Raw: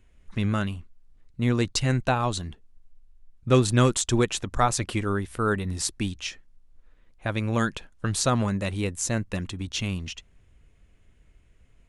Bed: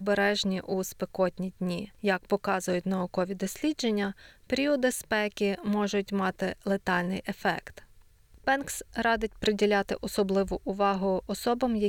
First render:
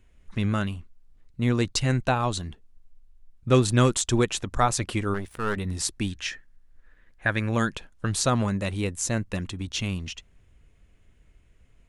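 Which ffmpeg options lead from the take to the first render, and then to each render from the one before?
-filter_complex "[0:a]asettb=1/sr,asplit=3[a][b][c];[a]atrim=end=5.144[d];[b]atrim=start=5.14:end=5.57,asetpts=PTS-STARTPTS,afade=t=in:d=0.004:c=qsin,afade=t=out:st=0.426:d=0.004:c=qsin,aeval=exprs='if(lt(val(0),0),0.251*val(0),val(0))':c=same[e];[c]atrim=start=5.566[f];[d][e]acrossfade=d=0.004:c1=hsin:c2=qsin[g];[g][f]acrossfade=d=0.004:c1=qsin:c2=hsin,asettb=1/sr,asplit=3[h][i][j];[h]atrim=end=6.094[k];[i]atrim=start=6.09:end=7.49,asetpts=PTS-STARTPTS,afade=t=in:d=0.004:c=qsin,afade=t=out:st=1.396:d=0.004:c=qsin,equalizer=f=1.7k:t=o:w=0.45:g=13[l];[j]atrim=start=7.486[m];[k][l]acrossfade=d=0.004:c1=hsin:c2=qsin[n];[n][m]acrossfade=d=0.004:c1=qsin:c2=hsin"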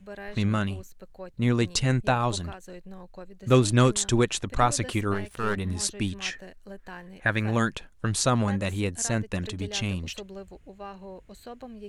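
-filter_complex "[1:a]volume=-15dB[a];[0:a][a]amix=inputs=2:normalize=0"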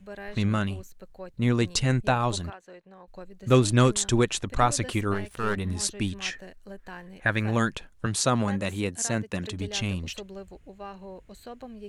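-filter_complex "[0:a]asettb=1/sr,asplit=3[a][b][c];[a]atrim=end=2.504[d];[b]atrim=start=2.5:end=3.08,asetpts=PTS-STARTPTS,afade=t=in:d=0.004:c=qsin,afade=t=out:st=0.576:d=0.004:c=qsin,bandpass=f=1.1k:t=q:w=0.52[e];[c]atrim=start=3.076[f];[d][e]acrossfade=d=0.004:c1=hsin:c2=qsin[g];[g][f]acrossfade=d=0.004:c1=qsin:c2=hsin,asettb=1/sr,asplit=3[h][i][j];[h]atrim=end=8.064[k];[i]atrim=start=8.06:end=9.51,asetpts=PTS-STARTPTS,afade=t=in:d=0.004:c=qsin,afade=t=out:st=1.446:d=0.004:c=qsin,highpass=110[l];[j]atrim=start=9.506[m];[k][l]acrossfade=d=0.004:c1=hsin:c2=qsin[n];[n][m]acrossfade=d=0.004:c1=qsin:c2=hsin"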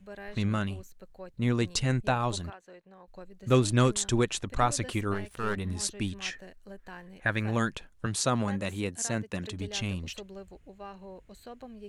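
-af "volume=-3.5dB"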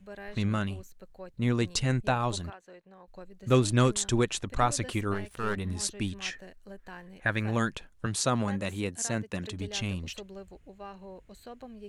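-af anull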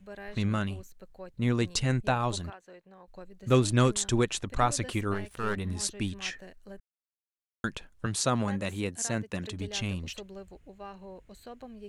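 -filter_complex "[0:a]asplit=3[a][b][c];[a]atrim=end=6.8,asetpts=PTS-STARTPTS,afade=t=out:st=6.796:d=0.004:c=hsin[d];[b]atrim=start=6.8:end=7.64,asetpts=PTS-STARTPTS,volume=0[e];[c]atrim=start=7.64,asetpts=PTS-STARTPTS,afade=t=in:d=0.004:c=hsin[f];[d][e][f]concat=n=3:v=0:a=1"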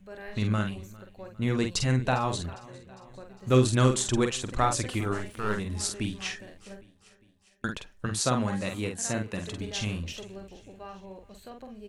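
-filter_complex "[0:a]asplit=2[a][b];[b]adelay=47,volume=-5.5dB[c];[a][c]amix=inputs=2:normalize=0,aecho=1:1:404|808|1212|1616:0.0794|0.0453|0.0258|0.0147"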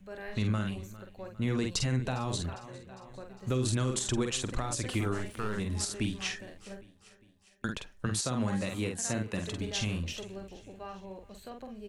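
-filter_complex "[0:a]alimiter=limit=-20dB:level=0:latency=1:release=97,acrossover=split=400|3000[a][b][c];[b]acompressor=threshold=-35dB:ratio=6[d];[a][d][c]amix=inputs=3:normalize=0"

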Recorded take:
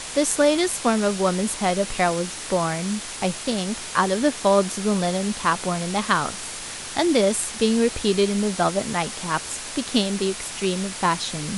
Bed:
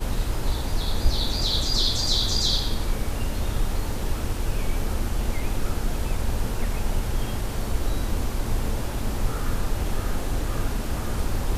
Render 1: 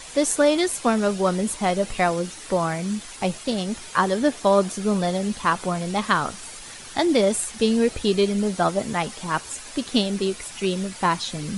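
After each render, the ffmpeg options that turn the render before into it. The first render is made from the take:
-af "afftdn=nr=9:nf=-34"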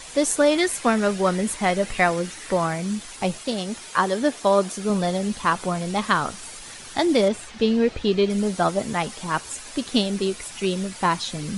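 -filter_complex "[0:a]asettb=1/sr,asplit=3[a][b][c];[a]atrim=end=0.514[d];[b]atrim=start=0.51:end=2.67,asetpts=PTS-STARTPTS,afade=t=in:d=0.004:c=qsin,afade=t=out:st=2.156:d=0.004:c=qsin,equalizer=f=1.9k:w=1.9:g=6[e];[c]atrim=start=2.666[f];[d][e]acrossfade=d=0.004:c1=hsin:c2=qsin[g];[g][f]acrossfade=d=0.004:c1=qsin:c2=hsin,asettb=1/sr,asplit=3[h][i][j];[h]atrim=end=3.424[k];[i]atrim=start=3.42:end=4.9,asetpts=PTS-STARTPTS,afade=t=in:d=0.004:c=qsin,afade=t=out:st=1.476:d=0.004:c=qsin,lowshelf=f=130:g=-9.5[l];[j]atrim=start=4.896[m];[k][l]acrossfade=d=0.004:c1=hsin:c2=qsin[n];[n][m]acrossfade=d=0.004:c1=qsin:c2=hsin,asettb=1/sr,asplit=3[o][p][q];[o]atrim=end=7.284[r];[p]atrim=start=7.28:end=8.3,asetpts=PTS-STARTPTS,afade=t=in:d=0.004:c=qsin,afade=t=out:st=1.016:d=0.004:c=qsin,lowpass=4.2k[s];[q]atrim=start=8.296[t];[r][s]acrossfade=d=0.004:c1=hsin:c2=qsin[u];[u][t]acrossfade=d=0.004:c1=qsin:c2=hsin"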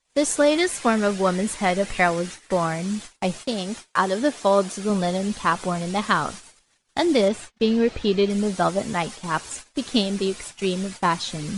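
-af "agate=range=-36dB:threshold=-35dB:ratio=16:detection=peak,lowpass=f=10k:w=0.5412,lowpass=f=10k:w=1.3066"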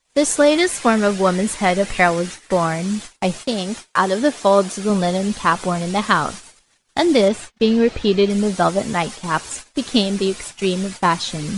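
-af "volume=4.5dB,alimiter=limit=-1dB:level=0:latency=1"

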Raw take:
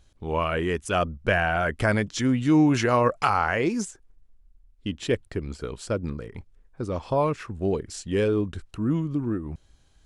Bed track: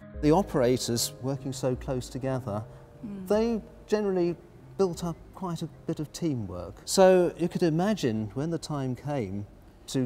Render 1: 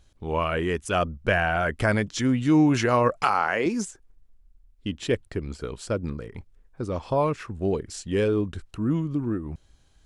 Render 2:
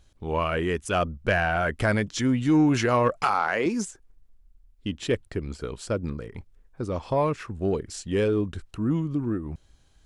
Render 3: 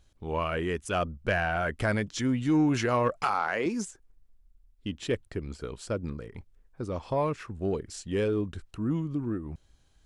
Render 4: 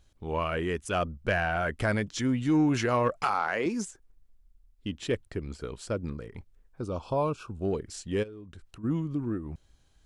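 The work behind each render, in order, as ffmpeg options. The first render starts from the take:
-filter_complex "[0:a]asettb=1/sr,asplit=3[a][b][c];[a]atrim=end=3.244[d];[b]atrim=start=3.24:end=3.66,asetpts=PTS-STARTPTS,afade=t=in:d=0.004:c=qsin,afade=t=out:st=0.416:d=0.004:c=qsin,highpass=210[e];[c]atrim=start=3.656[f];[d][e]acrossfade=d=0.004:c1=hsin:c2=qsin[g];[g][f]acrossfade=d=0.004:c1=qsin:c2=hsin"
-af "asoftclip=type=tanh:threshold=-10.5dB"
-af "volume=-4dB"
-filter_complex "[0:a]asettb=1/sr,asplit=3[a][b][c];[a]atrim=end=6.814[d];[b]atrim=start=6.81:end=7.65,asetpts=PTS-STARTPTS,afade=t=in:d=0.004:c=qsin,afade=t=out:st=0.836:d=0.004:c=qsin,asuperstop=centerf=1900:order=8:qfactor=2.3[e];[c]atrim=start=7.646[f];[d][e]acrossfade=d=0.004:c1=hsin:c2=qsin[g];[g][f]acrossfade=d=0.004:c1=qsin:c2=hsin,asplit=3[h][i][j];[h]afade=t=out:st=8.22:d=0.02[k];[i]acompressor=threshold=-45dB:ratio=4:attack=3.2:release=140:knee=1:detection=peak,afade=t=in:st=8.22:d=0.02,afade=t=out:st=8.83:d=0.02[l];[j]afade=t=in:st=8.83:d=0.02[m];[k][l][m]amix=inputs=3:normalize=0"

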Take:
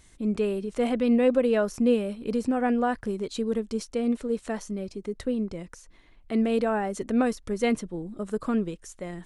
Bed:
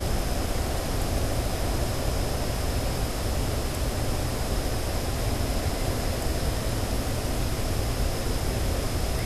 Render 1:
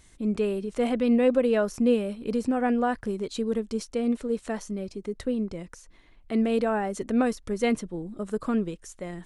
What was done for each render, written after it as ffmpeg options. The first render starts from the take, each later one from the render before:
-af anull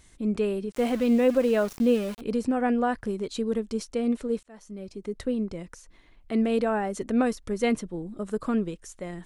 -filter_complex "[0:a]asettb=1/sr,asplit=3[a][b][c];[a]atrim=end=0.724[d];[b]atrim=start=0.72:end=2.21,asetpts=PTS-STARTPTS,afade=t=in:d=0.004:c=qsin,afade=t=out:st=1.486:d=0.004:c=qsin,aeval=exprs='val(0)*gte(abs(val(0)),0.015)':c=same[e];[c]atrim=start=2.206[f];[d][e]acrossfade=d=0.004:c1=hsin:c2=qsin[g];[g][f]acrossfade=d=0.004:c1=qsin:c2=hsin,asplit=2[h][i];[h]atrim=end=4.43,asetpts=PTS-STARTPTS,afade=t=out:st=4.426:d=0.004:c=hsin[j];[i]atrim=start=4.43,asetpts=PTS-STARTPTS,afade=t=in:d=0.7[k];[j][k]concat=n=2:v=0:a=1"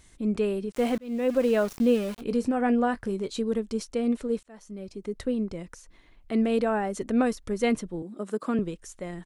-filter_complex "[0:a]asplit=3[a][b][c];[a]afade=t=out:st=2.16:d=0.02[d];[b]asplit=2[e][f];[f]adelay=21,volume=-13dB[g];[e][g]amix=inputs=2:normalize=0,afade=t=in:st=2.16:d=0.02,afade=t=out:st=3.4:d=0.02[h];[c]afade=t=in:st=3.4:d=0.02[i];[d][h][i]amix=inputs=3:normalize=0,asettb=1/sr,asplit=3[j][k][l];[j]atrim=end=8.024[m];[k]atrim=start=8.02:end=8.59,asetpts=PTS-STARTPTS,afade=t=in:d=0.004:c=qsin,afade=t=out:st=0.566:d=0.004:c=qsin,highpass=f=200:w=0.5412,highpass=f=200:w=1.3066[n];[l]atrim=start=8.586[o];[m][n]acrossfade=d=0.004:c1=hsin:c2=qsin[p];[p][o]acrossfade=d=0.004:c1=qsin:c2=hsin,asplit=2[q][r];[q]atrim=end=0.98,asetpts=PTS-STARTPTS,afade=t=out:st=0.976:d=0.004:c=hsin[s];[r]atrim=start=0.98,asetpts=PTS-STARTPTS,afade=t=in:d=0.46[t];[s][t]concat=n=2:v=0:a=1"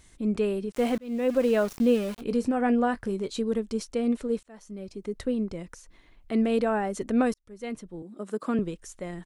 -filter_complex "[0:a]asplit=2[a][b];[a]atrim=end=7.34,asetpts=PTS-STARTPTS,afade=t=out:st=7.336:d=0.004:c=hsin[c];[b]atrim=start=7.34,asetpts=PTS-STARTPTS,afade=t=in:d=1.18[d];[c][d]concat=n=2:v=0:a=1"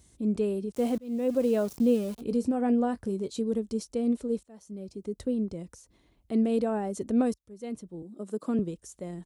-af "highpass=f=46:w=0.5412,highpass=f=46:w=1.3066,equalizer=f=1.8k:w=0.62:g=-12"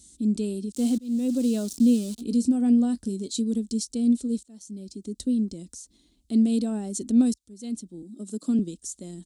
-af "equalizer=f=125:t=o:w=1:g=-9,equalizer=f=250:t=o:w=1:g=10,equalizer=f=500:t=o:w=1:g=-8,equalizer=f=1k:t=o:w=1:g=-9,equalizer=f=2k:t=o:w=1:g=-8,equalizer=f=4k:t=o:w=1:g=9,equalizer=f=8k:t=o:w=1:g=12"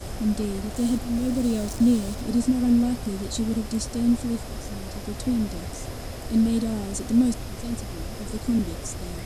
-filter_complex "[1:a]volume=-7.5dB[a];[0:a][a]amix=inputs=2:normalize=0"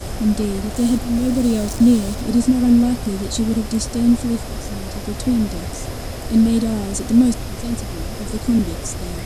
-af "volume=6.5dB"

